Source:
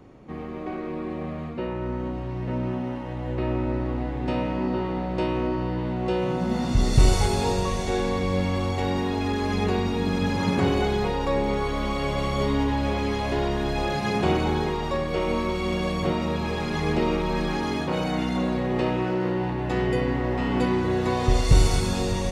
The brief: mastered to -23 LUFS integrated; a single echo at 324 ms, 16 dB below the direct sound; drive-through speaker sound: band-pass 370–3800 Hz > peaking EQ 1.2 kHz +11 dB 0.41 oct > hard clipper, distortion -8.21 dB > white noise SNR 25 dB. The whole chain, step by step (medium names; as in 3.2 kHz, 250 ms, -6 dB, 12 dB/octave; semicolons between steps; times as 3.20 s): band-pass 370–3800 Hz; peaking EQ 1.2 kHz +11 dB 0.41 oct; delay 324 ms -16 dB; hard clipper -28 dBFS; white noise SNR 25 dB; trim +8 dB